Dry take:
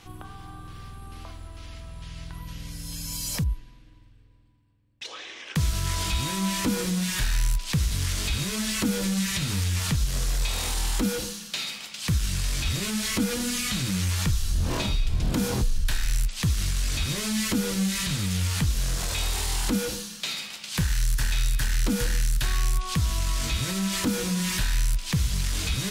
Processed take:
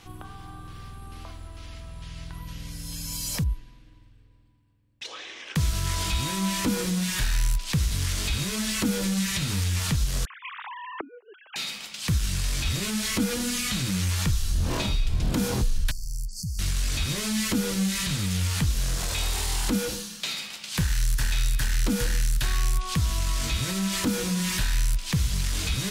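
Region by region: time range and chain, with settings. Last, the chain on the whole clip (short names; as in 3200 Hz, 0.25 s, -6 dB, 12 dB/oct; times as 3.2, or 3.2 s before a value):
10.25–11.56 sine-wave speech + three-band isolator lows -15 dB, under 210 Hz, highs -19 dB, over 2100 Hz + flipped gate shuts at -22 dBFS, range -26 dB
15.91–16.59 compressor 5:1, threshold -28 dBFS + brick-wall FIR band-stop 220–4300 Hz
whole clip: dry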